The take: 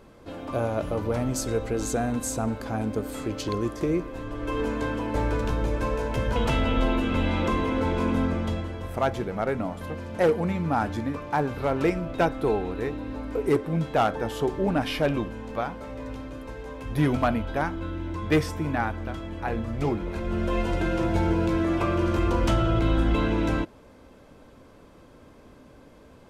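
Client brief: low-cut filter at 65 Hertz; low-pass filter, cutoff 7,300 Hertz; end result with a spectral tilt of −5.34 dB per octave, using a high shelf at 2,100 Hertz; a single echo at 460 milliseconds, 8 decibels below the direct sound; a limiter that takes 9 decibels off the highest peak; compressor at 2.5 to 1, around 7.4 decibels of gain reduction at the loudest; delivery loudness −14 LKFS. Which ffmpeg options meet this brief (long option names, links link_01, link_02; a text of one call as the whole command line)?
ffmpeg -i in.wav -af "highpass=65,lowpass=7300,highshelf=frequency=2100:gain=4.5,acompressor=threshold=-28dB:ratio=2.5,alimiter=limit=-24dB:level=0:latency=1,aecho=1:1:460:0.398,volume=19.5dB" out.wav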